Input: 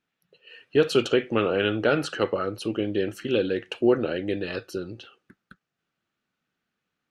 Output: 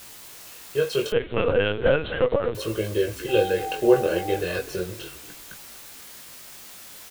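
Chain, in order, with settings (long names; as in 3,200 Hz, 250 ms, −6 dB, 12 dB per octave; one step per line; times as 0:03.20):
fade in at the beginning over 1.52 s
comb filter 1.9 ms, depth 90%
in parallel at +0.5 dB: speech leveller 2 s
0:03.28–0:04.36: on the sum: steady tone 780 Hz −24 dBFS
bit-depth reduction 6 bits, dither triangular
chorus effect 0.34 Hz, delay 18 ms, depth 4.9 ms
on a send: echo with shifted repeats 243 ms, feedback 36%, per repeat −34 Hz, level −15 dB
0:01.12–0:02.55: on the sum: linear-prediction vocoder at 8 kHz pitch kept
level −4 dB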